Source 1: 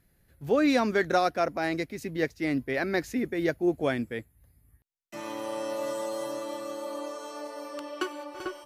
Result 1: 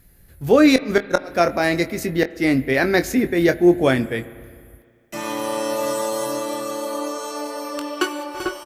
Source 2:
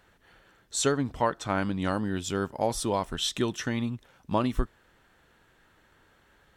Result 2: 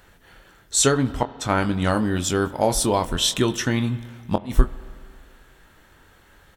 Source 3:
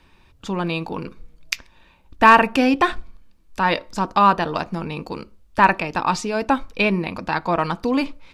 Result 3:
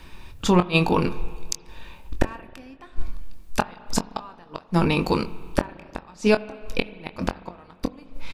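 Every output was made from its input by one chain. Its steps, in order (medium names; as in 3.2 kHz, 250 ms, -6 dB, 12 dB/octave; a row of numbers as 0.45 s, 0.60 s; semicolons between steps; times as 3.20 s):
treble shelf 7.4 kHz +7.5 dB; inverted gate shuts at -13 dBFS, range -37 dB; bass shelf 63 Hz +8 dB; doubling 23 ms -9.5 dB; spring tank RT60 2.1 s, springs 34/44 ms, chirp 45 ms, DRR 16 dB; peak normalisation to -2 dBFS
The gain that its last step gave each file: +9.5 dB, +6.5 dB, +7.5 dB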